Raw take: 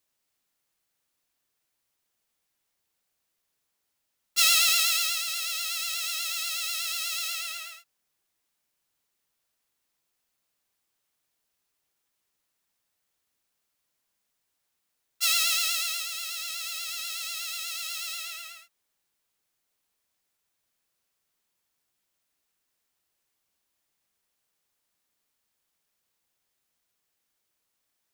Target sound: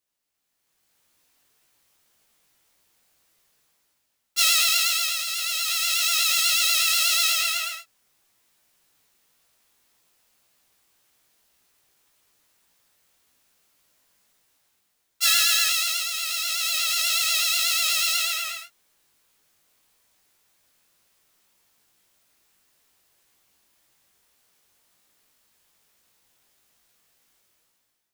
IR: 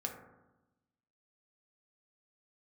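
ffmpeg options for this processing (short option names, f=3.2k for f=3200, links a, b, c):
-filter_complex "[0:a]dynaudnorm=f=310:g=5:m=16dB,flanger=delay=16:depth=5.2:speed=1.8,asettb=1/sr,asplit=3[a][b][c];[a]atrim=end=15.254[d];[b]atrim=start=15.25:end=15.69,asetpts=PTS-STARTPTS,afade=t=in:d=0.004:c=qsin,afade=t=out:st=0.436:d=0.004:c=qsin,aeval=exprs='val(0)+0.02*sin(2*PI*1700*n/s)':c=same[e];[c]atrim=start=15.686[f];[d][e]acrossfade=d=0.004:c1=hsin:c2=qsin[g];[g][f]acrossfade=d=0.004:c1=qsin:c2=hsin"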